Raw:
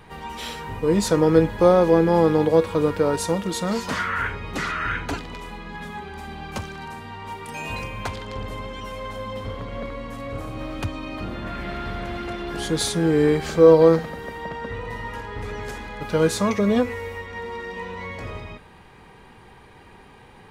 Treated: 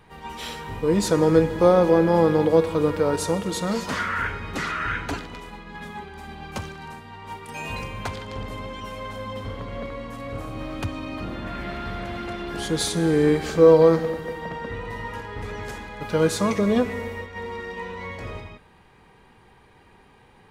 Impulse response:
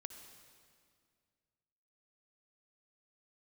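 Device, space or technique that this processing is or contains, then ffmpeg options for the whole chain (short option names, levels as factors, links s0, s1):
keyed gated reverb: -filter_complex "[0:a]asplit=3[s0][s1][s2];[1:a]atrim=start_sample=2205[s3];[s1][s3]afir=irnorm=-1:irlink=0[s4];[s2]apad=whole_len=904326[s5];[s4][s5]sidechaingate=range=0.0224:threshold=0.02:ratio=16:detection=peak,volume=1.41[s6];[s0][s6]amix=inputs=2:normalize=0,volume=0.501"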